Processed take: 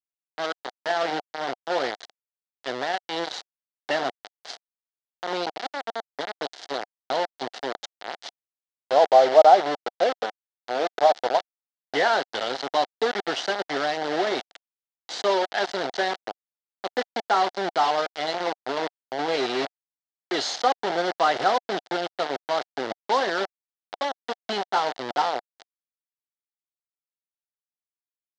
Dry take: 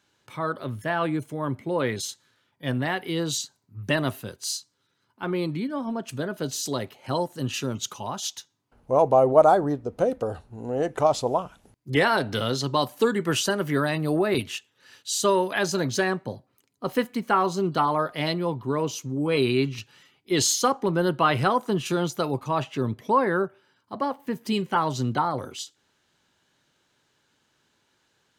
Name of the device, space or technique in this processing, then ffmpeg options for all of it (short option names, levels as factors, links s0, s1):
hand-held game console: -af "acrusher=bits=3:mix=0:aa=0.000001,highpass=440,equalizer=f=730:t=q:w=4:g=8,equalizer=f=1100:t=q:w=4:g=-6,equalizer=f=2500:t=q:w=4:g=-9,lowpass=f=4700:w=0.5412,lowpass=f=4700:w=1.3066"